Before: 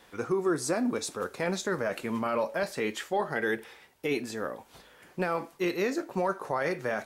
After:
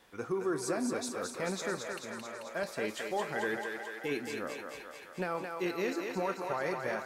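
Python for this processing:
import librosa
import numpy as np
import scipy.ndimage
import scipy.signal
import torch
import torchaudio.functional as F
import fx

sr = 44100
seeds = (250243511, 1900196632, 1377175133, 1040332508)

y = fx.level_steps(x, sr, step_db=20, at=(1.75, 2.47))
y = fx.echo_thinned(y, sr, ms=219, feedback_pct=72, hz=380.0, wet_db=-4.0)
y = F.gain(torch.from_numpy(y), -5.5).numpy()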